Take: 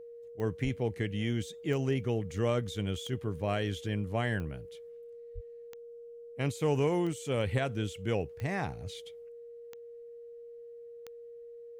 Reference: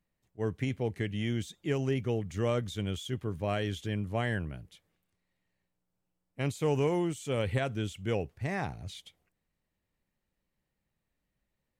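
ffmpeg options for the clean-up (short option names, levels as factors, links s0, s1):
-filter_complex "[0:a]adeclick=t=4,bandreject=f=470:w=30,asplit=3[s0][s1][s2];[s0]afade=t=out:st=0.63:d=0.02[s3];[s1]highpass=f=140:w=0.5412,highpass=f=140:w=1.3066,afade=t=in:st=0.63:d=0.02,afade=t=out:st=0.75:d=0.02[s4];[s2]afade=t=in:st=0.75:d=0.02[s5];[s3][s4][s5]amix=inputs=3:normalize=0,asplit=3[s6][s7][s8];[s6]afade=t=out:st=5.34:d=0.02[s9];[s7]highpass=f=140:w=0.5412,highpass=f=140:w=1.3066,afade=t=in:st=5.34:d=0.02,afade=t=out:st=5.46:d=0.02[s10];[s8]afade=t=in:st=5.46:d=0.02[s11];[s9][s10][s11]amix=inputs=3:normalize=0"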